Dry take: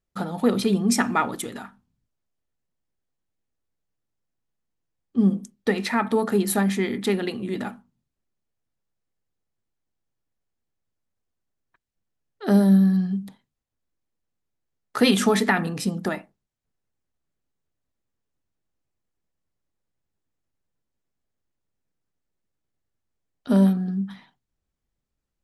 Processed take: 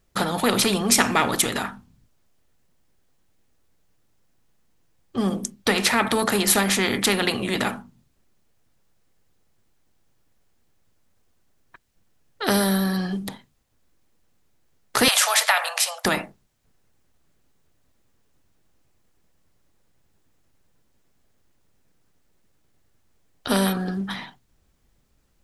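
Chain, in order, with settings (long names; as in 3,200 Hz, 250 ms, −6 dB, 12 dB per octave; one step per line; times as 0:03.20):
0:15.08–0:16.05: Butterworth high-pass 580 Hz 96 dB per octave
every bin compressed towards the loudest bin 2 to 1
level +5.5 dB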